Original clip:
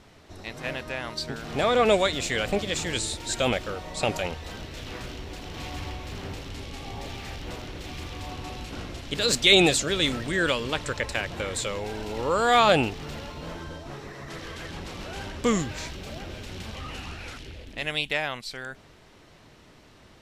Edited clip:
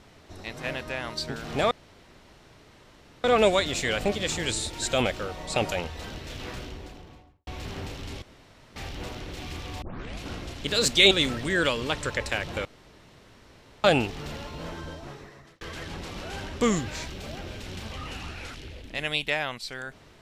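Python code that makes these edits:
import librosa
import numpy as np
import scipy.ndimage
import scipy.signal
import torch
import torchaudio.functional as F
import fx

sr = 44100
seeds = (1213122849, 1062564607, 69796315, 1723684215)

y = fx.studio_fade_out(x, sr, start_s=4.97, length_s=0.97)
y = fx.edit(y, sr, fx.insert_room_tone(at_s=1.71, length_s=1.53),
    fx.room_tone_fill(start_s=6.69, length_s=0.54),
    fx.tape_start(start_s=8.29, length_s=0.39),
    fx.cut(start_s=9.58, length_s=0.36),
    fx.room_tone_fill(start_s=11.48, length_s=1.19),
    fx.fade_out_span(start_s=13.76, length_s=0.68), tone=tone)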